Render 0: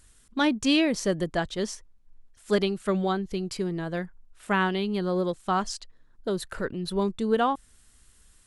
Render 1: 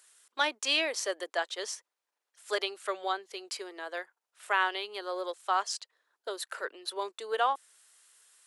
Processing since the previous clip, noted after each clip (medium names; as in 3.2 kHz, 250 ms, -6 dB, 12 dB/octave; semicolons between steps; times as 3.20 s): Bessel high-pass 720 Hz, order 8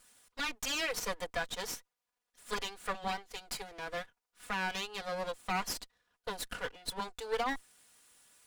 comb filter that takes the minimum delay 4.1 ms; peak limiter -24 dBFS, peak gain reduction 9.5 dB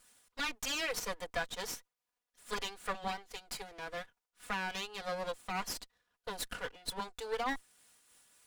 random flutter of the level, depth 60%; trim +1 dB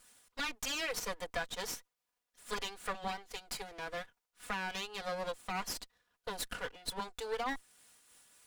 compression 1.5:1, threshold -40 dBFS, peak gain reduction 4 dB; trim +2 dB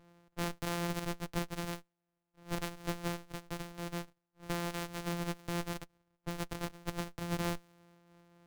sorted samples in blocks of 256 samples; tape noise reduction on one side only decoder only; trim +1.5 dB